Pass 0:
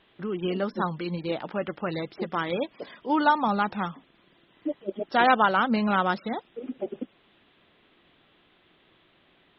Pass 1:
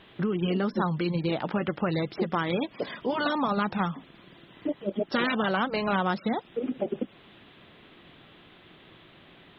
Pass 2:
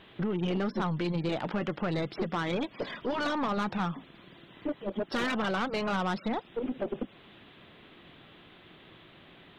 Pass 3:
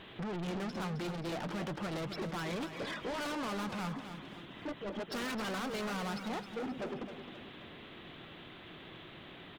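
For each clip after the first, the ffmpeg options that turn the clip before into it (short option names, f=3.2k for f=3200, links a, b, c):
-af "afftfilt=real='re*lt(hypot(re,im),0.447)':imag='im*lt(hypot(re,im),0.447)':win_size=1024:overlap=0.75,equalizer=f=130:t=o:w=1.5:g=5.5,acompressor=threshold=-34dB:ratio=3,volume=8dB"
-af "aeval=exprs='(tanh(17.8*val(0)+0.3)-tanh(0.3))/17.8':c=same"
-af "asoftclip=type=tanh:threshold=-39.5dB,aecho=1:1:264|528|792|1056|1320:0.335|0.144|0.0619|0.0266|0.0115,volume=3dB"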